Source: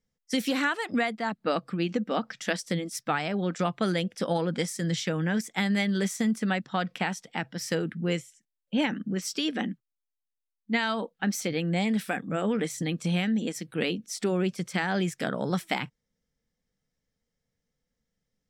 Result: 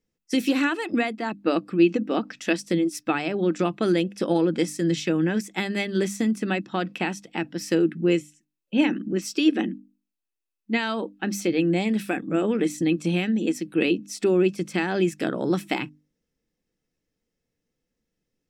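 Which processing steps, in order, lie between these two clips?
notches 50/100/150/200/250/300 Hz; small resonant body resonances 330/2600 Hz, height 14 dB, ringing for 40 ms

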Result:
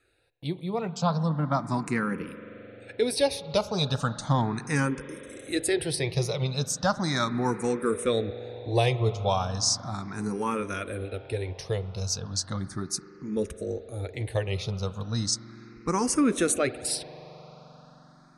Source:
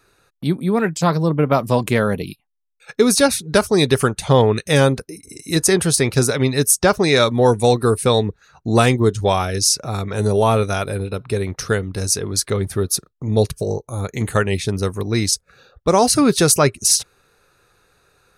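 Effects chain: LPF 9300 Hz 24 dB/oct; notch 410 Hz, Q 12; reverb RT60 5.1 s, pre-delay 43 ms, DRR 13 dB; endless phaser +0.36 Hz; gain -7 dB

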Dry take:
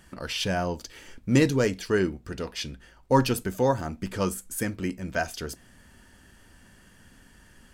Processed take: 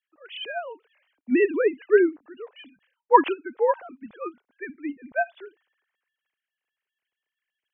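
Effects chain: sine-wave speech; three-band expander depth 70%; gain -1.5 dB

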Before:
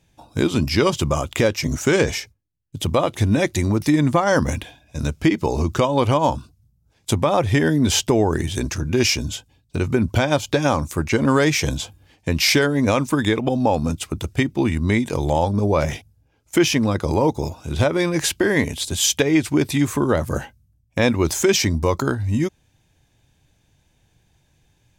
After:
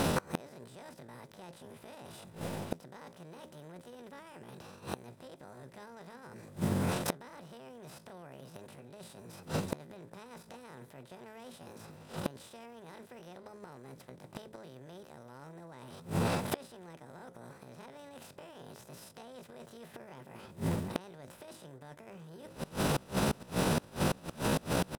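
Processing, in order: per-bin compression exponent 0.4; tilt -1.5 dB/oct; de-hum 65.68 Hz, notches 5; reverse; compressor 8:1, threshold -19 dBFS, peak gain reduction 15 dB; reverse; pitch shift +8.5 st; outdoor echo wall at 98 m, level -21 dB; flipped gate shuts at -16 dBFS, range -26 dB; gain -2 dB

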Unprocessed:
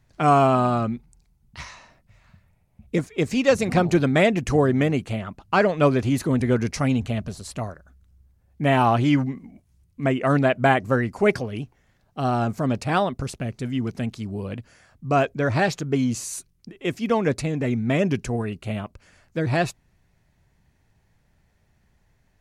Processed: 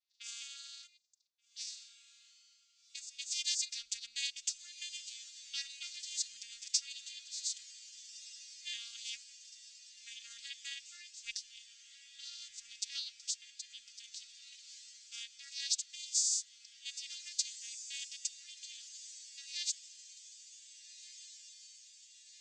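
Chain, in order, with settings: arpeggiated vocoder minor triad, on A#3, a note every 0.416 s; inverse Chebyshev band-stop 180–960 Hz, stop band 80 dB; tilt shelf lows -7 dB, about 890 Hz; low-pass opened by the level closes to 2100 Hz, open at -67 dBFS; on a send: diffused feedback echo 1.598 s, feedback 63%, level -13 dB; on the sum: gain +11.5 dB

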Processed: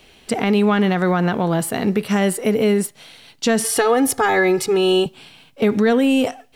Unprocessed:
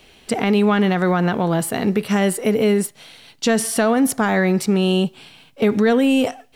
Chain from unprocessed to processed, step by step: 3.64–5.06 comb 2.4 ms, depth 96%

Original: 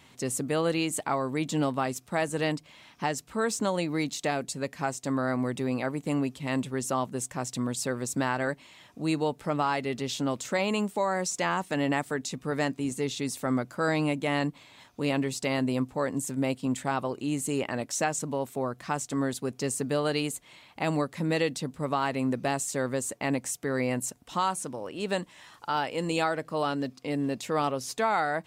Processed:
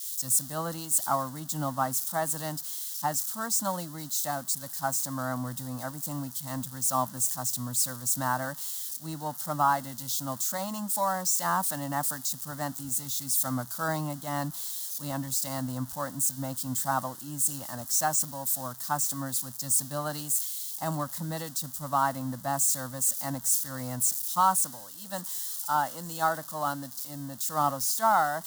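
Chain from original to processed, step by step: switching spikes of -24 dBFS; fixed phaser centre 1000 Hz, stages 4; three-band expander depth 100%

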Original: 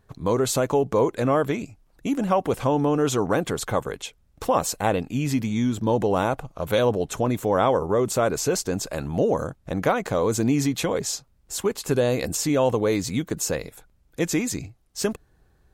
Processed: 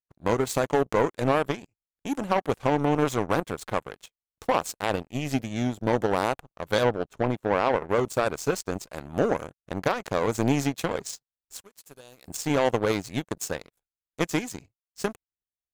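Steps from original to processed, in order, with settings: 11.61–12.28 pre-emphasis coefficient 0.8; in parallel at -7.5 dB: crossover distortion -41.5 dBFS; 6.83–7.89 on the sum: high shelf 4500 Hz -11.5 dB; power-law curve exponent 2; maximiser +12.5 dB; gain -8.5 dB

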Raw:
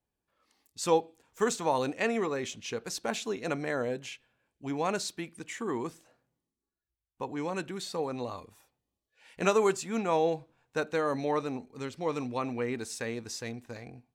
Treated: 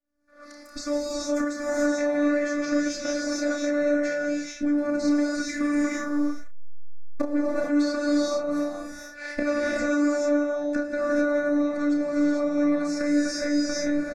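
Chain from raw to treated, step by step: 4.78–7.22 level-crossing sampler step -47 dBFS; recorder AGC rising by 72 dB/s; dynamic EQ 10000 Hz, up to -8 dB, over -51 dBFS, Q 1.8; robotiser 292 Hz; air absorption 79 m; fixed phaser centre 610 Hz, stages 8; doubler 31 ms -7 dB; non-linear reverb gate 0.48 s rising, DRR -4.5 dB

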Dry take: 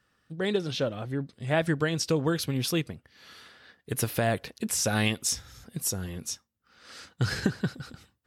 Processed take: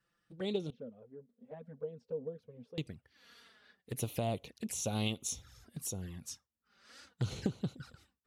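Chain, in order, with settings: 0.7–2.78 double band-pass 330 Hz, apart 0.95 oct; envelope flanger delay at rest 6 ms, full sweep at -27.5 dBFS; Doppler distortion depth 0.19 ms; gain -7 dB

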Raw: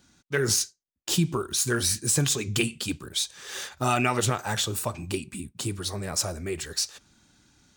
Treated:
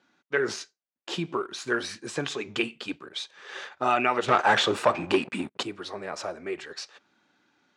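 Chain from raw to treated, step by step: 4.28–5.63 sample leveller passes 3; in parallel at -9 dB: crossover distortion -41 dBFS; on the sum: BPF 360–2500 Hz

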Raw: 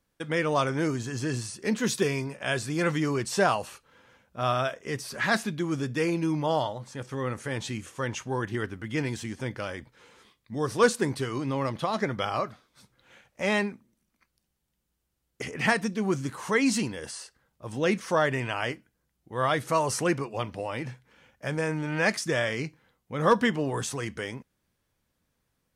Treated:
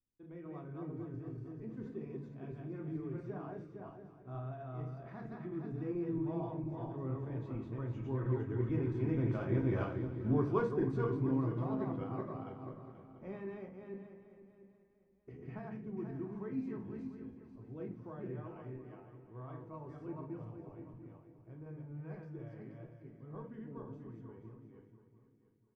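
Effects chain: regenerating reverse delay 0.235 s, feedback 45%, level -1.5 dB; Doppler pass-by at 9.84, 9 m/s, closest 1.6 m; high shelf 2000 Hz +11 dB; compressor 2:1, threshold -53 dBFS, peak gain reduction 15 dB; feedback echo 0.691 s, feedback 26%, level -14.5 dB; reverb RT60 0.40 s, pre-delay 3 ms, DRR 2.5 dB; low-pass opened by the level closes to 460 Hz, open at -21 dBFS; gain +14.5 dB

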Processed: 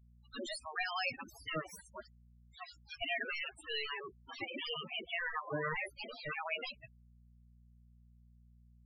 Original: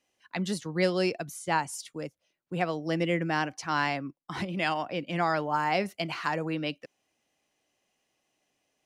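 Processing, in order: tracing distortion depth 0.031 ms; 2–3.02 inverse Chebyshev high-pass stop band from 540 Hz, stop band 50 dB; spectral gate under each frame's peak -15 dB weak; 5.19–5.77 Chebyshev low-pass 2000 Hz, order 8; limiter -29 dBFS, peak gain reduction 9.5 dB; hum 60 Hz, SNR 25 dB; loudest bins only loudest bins 8; gain +9.5 dB

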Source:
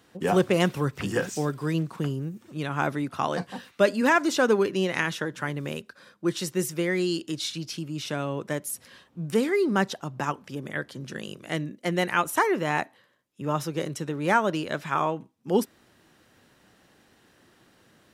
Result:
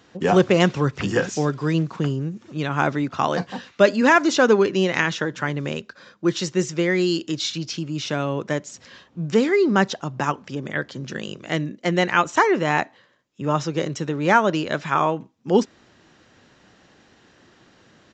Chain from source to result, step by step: downsampling 16000 Hz; gain +5.5 dB

